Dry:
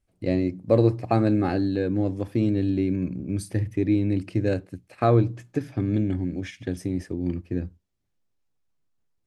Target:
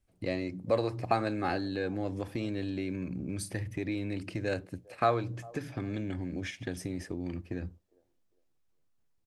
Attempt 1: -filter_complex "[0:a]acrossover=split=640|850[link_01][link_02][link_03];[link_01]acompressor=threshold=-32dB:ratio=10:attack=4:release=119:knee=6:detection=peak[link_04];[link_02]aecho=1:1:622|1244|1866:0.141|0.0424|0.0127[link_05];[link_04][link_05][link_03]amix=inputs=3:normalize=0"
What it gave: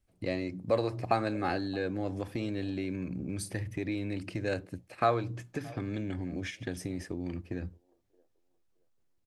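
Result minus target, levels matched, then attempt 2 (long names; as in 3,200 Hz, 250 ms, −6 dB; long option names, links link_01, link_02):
echo 219 ms late
-filter_complex "[0:a]acrossover=split=640|850[link_01][link_02][link_03];[link_01]acompressor=threshold=-32dB:ratio=10:attack=4:release=119:knee=6:detection=peak[link_04];[link_02]aecho=1:1:403|806|1209:0.141|0.0424|0.0127[link_05];[link_04][link_05][link_03]amix=inputs=3:normalize=0"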